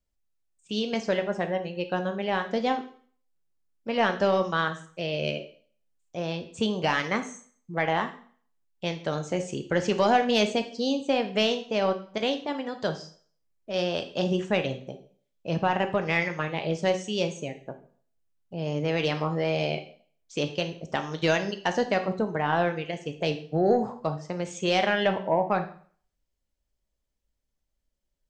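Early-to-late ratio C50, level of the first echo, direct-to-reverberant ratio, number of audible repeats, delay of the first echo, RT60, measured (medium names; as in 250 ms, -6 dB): 11.5 dB, no echo, 7.0 dB, no echo, no echo, 0.50 s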